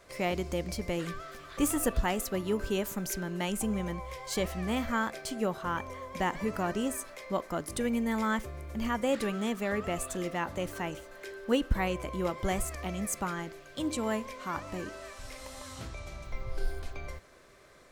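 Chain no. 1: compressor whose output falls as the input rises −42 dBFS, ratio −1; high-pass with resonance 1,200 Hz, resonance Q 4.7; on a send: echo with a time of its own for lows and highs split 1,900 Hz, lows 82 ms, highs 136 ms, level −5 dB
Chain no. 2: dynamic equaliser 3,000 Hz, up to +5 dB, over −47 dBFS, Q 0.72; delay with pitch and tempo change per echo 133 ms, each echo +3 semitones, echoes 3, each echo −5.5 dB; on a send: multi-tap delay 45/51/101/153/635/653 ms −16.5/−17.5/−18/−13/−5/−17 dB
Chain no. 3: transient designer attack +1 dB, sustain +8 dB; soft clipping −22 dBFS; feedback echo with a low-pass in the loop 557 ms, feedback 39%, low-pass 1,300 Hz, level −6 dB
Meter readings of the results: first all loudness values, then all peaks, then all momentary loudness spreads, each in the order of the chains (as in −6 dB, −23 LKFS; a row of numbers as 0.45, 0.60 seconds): −35.5, −29.5, −33.0 LKFS; −16.5, −11.5, −19.5 dBFS; 12, 13, 10 LU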